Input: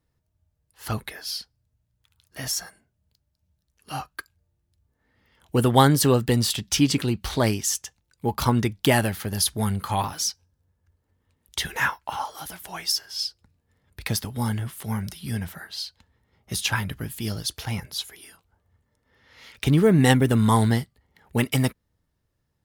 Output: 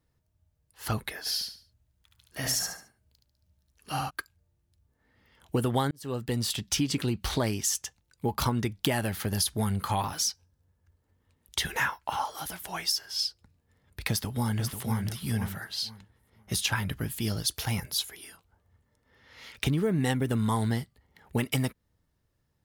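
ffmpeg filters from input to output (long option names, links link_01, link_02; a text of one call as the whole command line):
ffmpeg -i in.wav -filter_complex "[0:a]asplit=3[link_01][link_02][link_03];[link_01]afade=type=out:start_time=1.25:duration=0.02[link_04];[link_02]aecho=1:1:72|144|216|288:0.708|0.212|0.0637|0.0191,afade=type=in:start_time=1.25:duration=0.02,afade=type=out:start_time=4.09:duration=0.02[link_05];[link_03]afade=type=in:start_time=4.09:duration=0.02[link_06];[link_04][link_05][link_06]amix=inputs=3:normalize=0,asplit=2[link_07][link_08];[link_08]afade=type=in:start_time=14.1:duration=0.01,afade=type=out:start_time=15.06:duration=0.01,aecho=0:1:490|980|1470:0.398107|0.0796214|0.0159243[link_09];[link_07][link_09]amix=inputs=2:normalize=0,asettb=1/sr,asplit=3[link_10][link_11][link_12];[link_10]atrim=end=17.474[link_13];[link_11]atrim=start=17.47:end=18.05,asetpts=PTS-STARTPTS,afade=type=in:duration=0.004:curve=qsin,afade=type=out:start_time=0.576:duration=0.004:curve=qsin,highshelf=frequency=7300:gain=8[link_14];[link_12]atrim=start=18.046[link_15];[link_13][link_14]acrossfade=duration=0.004:curve1=hsin:curve2=qsin[link_16];[link_16][link_15]acrossfade=duration=0.004:curve1=qsin:curve2=hsin,asplit=2[link_17][link_18];[link_17]atrim=end=5.91,asetpts=PTS-STARTPTS,afade=type=out:start_time=5.906:duration=0.004:curve=hsin[link_19];[link_18]atrim=start=5.91,asetpts=PTS-STARTPTS,afade=type=in:duration=1.04[link_20];[link_19][link_20]concat=n=2:v=0:a=1,acompressor=threshold=-24dB:ratio=6" out.wav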